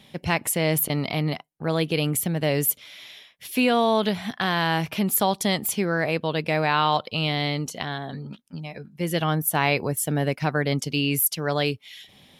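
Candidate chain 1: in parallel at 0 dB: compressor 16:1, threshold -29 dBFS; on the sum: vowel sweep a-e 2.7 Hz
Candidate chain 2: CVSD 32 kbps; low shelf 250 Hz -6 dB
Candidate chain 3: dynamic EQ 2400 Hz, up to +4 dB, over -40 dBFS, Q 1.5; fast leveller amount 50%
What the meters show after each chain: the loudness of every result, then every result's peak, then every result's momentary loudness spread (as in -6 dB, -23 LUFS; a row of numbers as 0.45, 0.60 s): -33.0, -27.5, -21.5 LUFS; -16.5, -11.5, -4.0 dBFS; 15, 15, 9 LU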